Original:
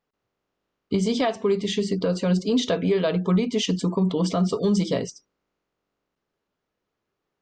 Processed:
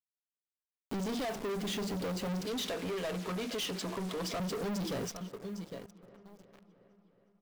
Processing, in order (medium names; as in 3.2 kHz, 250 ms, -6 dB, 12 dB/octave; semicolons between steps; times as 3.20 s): send-on-delta sampling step -38 dBFS; 2.45–4.40 s: frequency weighting A; feedback delay 809 ms, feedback 21%, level -20.5 dB; waveshaping leveller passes 5; feedback echo behind a low-pass 365 ms, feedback 56%, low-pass 2.2 kHz, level -23 dB; compression 1.5:1, threshold -50 dBFS, peak gain reduction 12.5 dB; trim -7.5 dB